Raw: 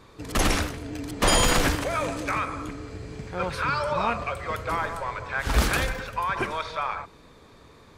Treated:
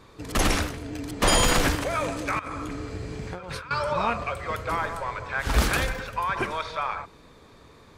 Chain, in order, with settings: 2.39–3.71 negative-ratio compressor -35 dBFS, ratio -1

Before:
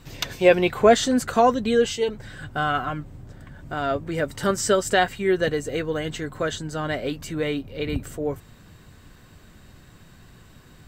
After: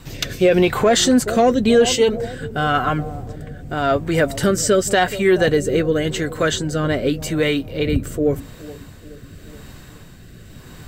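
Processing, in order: high shelf 10000 Hz +5.5 dB; analogue delay 0.424 s, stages 2048, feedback 53%, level -16.5 dB; in parallel at -4.5 dB: soft clip -15.5 dBFS, distortion -10 dB; on the sum: rotary speaker horn 0.9 Hz; maximiser +11 dB; gain -5 dB

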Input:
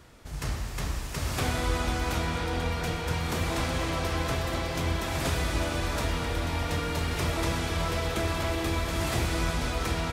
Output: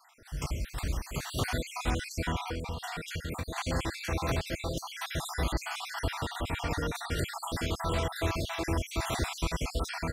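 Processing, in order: random spectral dropouts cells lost 55%; 2.4–3.58 compressor, threshold -32 dBFS, peak gain reduction 8 dB

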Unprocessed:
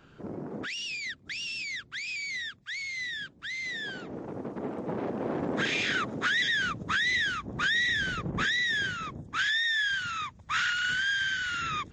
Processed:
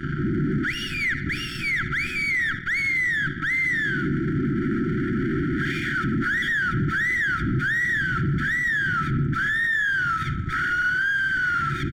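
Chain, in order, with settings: in parallel at +0.5 dB: compressor, threshold -37 dBFS, peak gain reduction 12.5 dB; on the sum: bell 140 Hz +10.5 dB 0.21 oct; feedback echo 81 ms, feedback 41%, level -21 dB; fuzz box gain 41 dB, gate -50 dBFS; FFT band-reject 380–1300 Hz; polynomial smoothing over 41 samples; limiter -18.5 dBFS, peak gain reduction 9.5 dB; on a send at -11.5 dB: reverb, pre-delay 47 ms; on the sum: ending taper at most 210 dB/s

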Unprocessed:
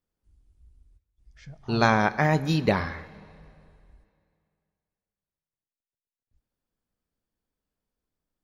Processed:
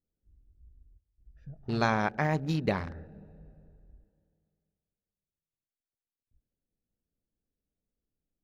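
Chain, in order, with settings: Wiener smoothing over 41 samples; in parallel at +2.5 dB: compressor, threshold -32 dBFS, peak gain reduction 15.5 dB; on the sum: gain -8 dB

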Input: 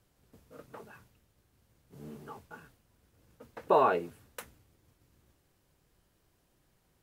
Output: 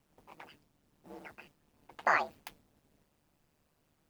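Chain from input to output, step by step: speed glide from 187% -> 156%; ring modulator 75 Hz

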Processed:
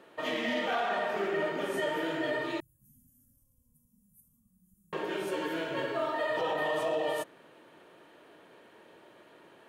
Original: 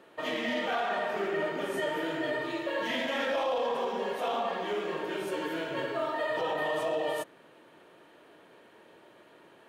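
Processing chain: 2.6–4.93 inverse Chebyshev band-stop 370–4100 Hz, stop band 60 dB

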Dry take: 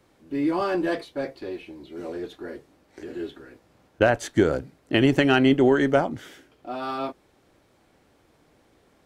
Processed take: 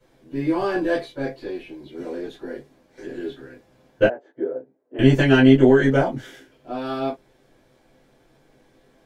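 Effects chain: 4.05–4.99 ladder band-pass 500 Hz, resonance 30%; reverb, pre-delay 3 ms, DRR -9.5 dB; gain -11.5 dB

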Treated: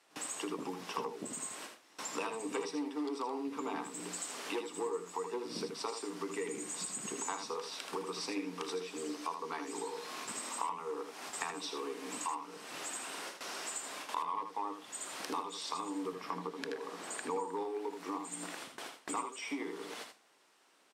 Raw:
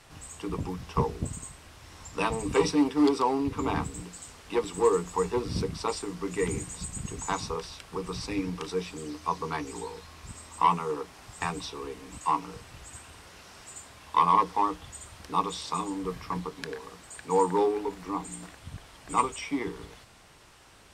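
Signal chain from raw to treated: HPF 250 Hz 24 dB/oct; gate with hold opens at -40 dBFS; 16.12–17.36 tilt -1.5 dB/oct; compressor 5:1, threshold -47 dBFS, peak gain reduction 26 dB; echo 79 ms -7.5 dB; gain +8.5 dB

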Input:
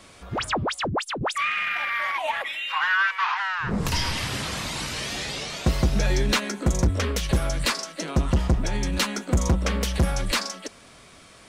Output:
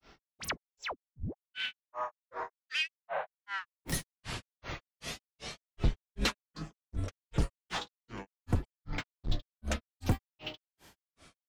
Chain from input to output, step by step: octaver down 2 oct, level -6 dB; grains 0.195 s, grains 2.6/s, pitch spread up and down by 12 st; gain -7 dB

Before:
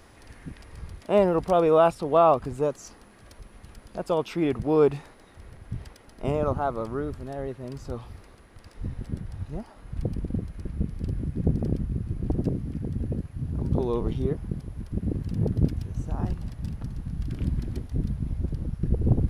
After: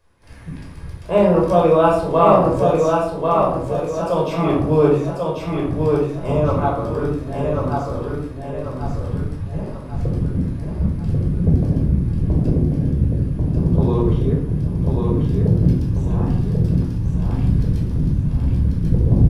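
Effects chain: gate -48 dBFS, range -16 dB; on a send: feedback echo 1.091 s, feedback 40%, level -3.5 dB; on the sum: shoebox room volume 920 m³, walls furnished, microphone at 5.3 m; gain -1 dB

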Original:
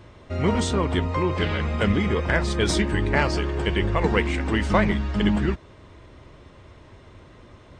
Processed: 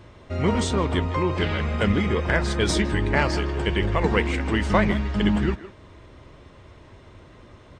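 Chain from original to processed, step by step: speakerphone echo 0.16 s, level -13 dB

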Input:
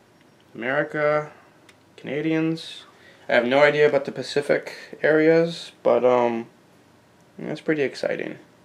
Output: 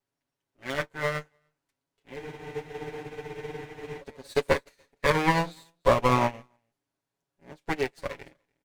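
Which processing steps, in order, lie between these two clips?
minimum comb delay 7.2 ms; high shelf 4700 Hz +8.5 dB; in parallel at -12 dB: soft clip -18 dBFS, distortion -10 dB; on the sum: echo 0.293 s -17 dB; spectral freeze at 2.2, 1.80 s; upward expander 2.5:1, over -37 dBFS

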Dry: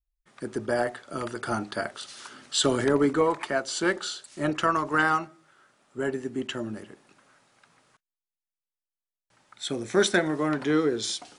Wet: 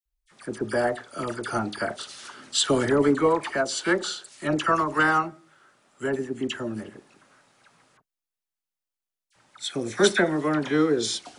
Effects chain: dispersion lows, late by 55 ms, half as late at 1600 Hz; gain +2 dB

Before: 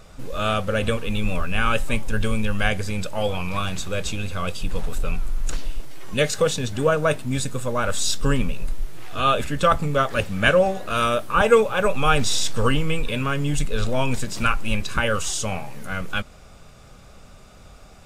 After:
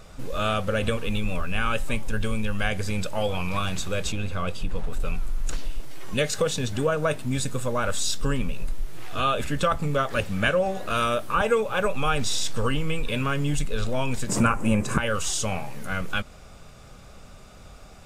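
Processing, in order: 14.29–14.98 ten-band EQ 125 Hz +11 dB, 250 Hz +11 dB, 500 Hz +10 dB, 1000 Hz +9 dB, 2000 Hz +4 dB, 4000 Hz -8 dB, 8000 Hz +11 dB; compressor 2.5:1, threshold -21 dBFS, peak gain reduction 9.5 dB; 4.12–5 high shelf 3400 Hz -8 dB

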